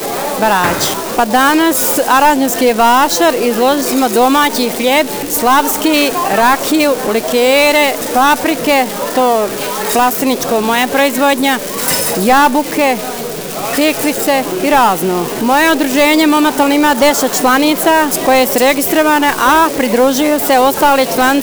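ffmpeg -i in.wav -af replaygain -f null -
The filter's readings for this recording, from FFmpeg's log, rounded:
track_gain = -7.2 dB
track_peak = 0.573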